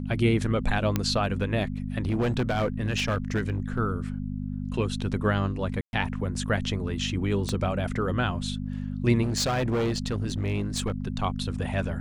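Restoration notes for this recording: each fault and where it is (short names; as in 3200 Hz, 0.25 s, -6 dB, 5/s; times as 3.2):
hum 50 Hz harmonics 5 -32 dBFS
0.96 pop -10 dBFS
2.06–3.79 clipped -21 dBFS
5.81–5.93 gap 0.121 s
7.49 pop -16 dBFS
9.22–10.92 clipped -22.5 dBFS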